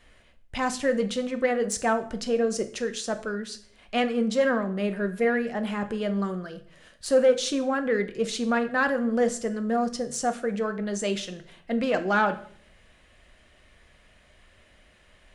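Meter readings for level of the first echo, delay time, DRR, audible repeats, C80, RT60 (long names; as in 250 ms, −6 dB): no echo audible, no echo audible, 8.0 dB, no echo audible, 18.0 dB, 0.55 s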